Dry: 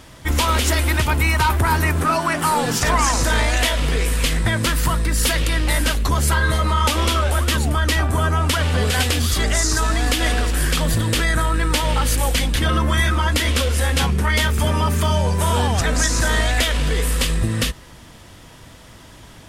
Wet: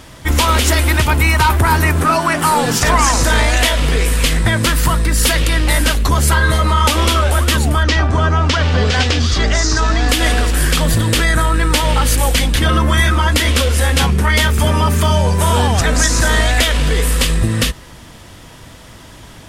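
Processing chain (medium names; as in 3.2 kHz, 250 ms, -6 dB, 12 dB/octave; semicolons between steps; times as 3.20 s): 7.83–10.09 s: Chebyshev low-pass 5.9 kHz, order 3; trim +5 dB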